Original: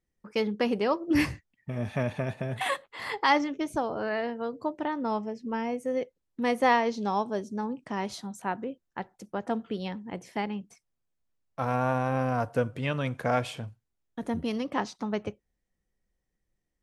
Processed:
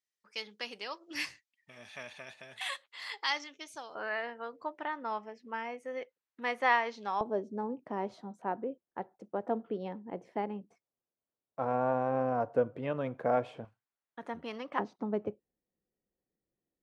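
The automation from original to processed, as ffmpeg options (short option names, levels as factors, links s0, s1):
-af "asetnsamples=n=441:p=0,asendcmd='3.95 bandpass f 1700;7.21 bandpass f 510;13.65 bandpass f 1300;14.79 bandpass f 380',bandpass=f=4600:t=q:w=0.91:csg=0"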